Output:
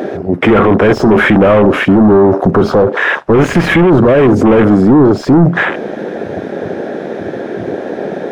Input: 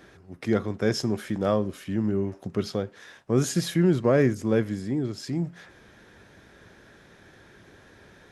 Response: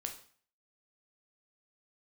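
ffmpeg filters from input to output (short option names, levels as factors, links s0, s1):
-filter_complex "[0:a]asplit=2[s0][s1];[s1]highpass=f=720:p=1,volume=50.1,asoftclip=type=tanh:threshold=0.376[s2];[s0][s2]amix=inputs=2:normalize=0,lowpass=f=1100:p=1,volume=0.501,afwtdn=0.0447,alimiter=level_in=7.5:limit=0.891:release=50:level=0:latency=1,volume=0.891"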